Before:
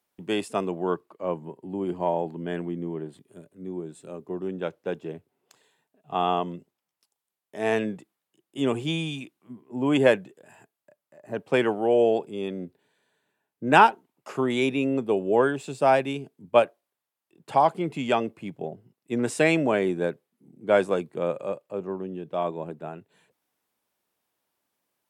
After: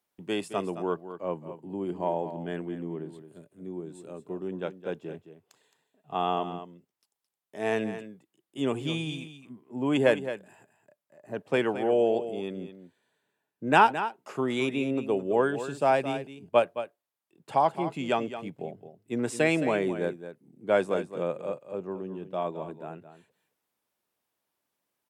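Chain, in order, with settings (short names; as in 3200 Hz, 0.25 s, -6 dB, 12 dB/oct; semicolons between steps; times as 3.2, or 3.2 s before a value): echo 0.217 s -11.5 dB; gain -3.5 dB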